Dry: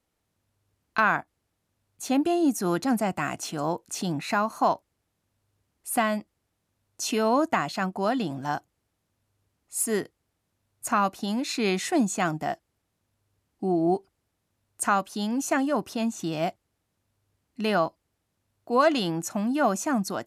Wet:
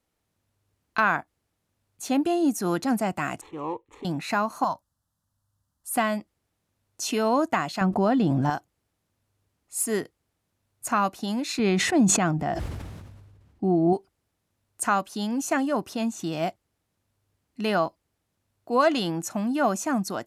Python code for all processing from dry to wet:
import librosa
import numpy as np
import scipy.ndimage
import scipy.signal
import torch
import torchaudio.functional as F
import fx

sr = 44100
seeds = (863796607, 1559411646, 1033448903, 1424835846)

y = fx.chain(x, sr, fx.median_filter(points=15),
    fx.lowpass(hz=5100.0, slope=12),
    fx.fixed_phaser(hz=1000.0, stages=8), at=(3.41, 4.05))
y = fx.chain(y, sr, fx.peak_eq(hz=730.0, db=-6.0, octaves=0.6),
    fx.fixed_phaser(hz=960.0, stages=4), at=(4.64, 5.94))
y = fx.chain(y, sr, fx.tilt_eq(slope=-2.5),
    fx.env_flatten(amount_pct=70), at=(7.81, 8.5))
y = fx.chain(y, sr, fx.lowpass(hz=2700.0, slope=6),
    fx.peak_eq(hz=66.0, db=11.0, octaves=2.7),
    fx.sustainer(db_per_s=33.0), at=(11.59, 13.93))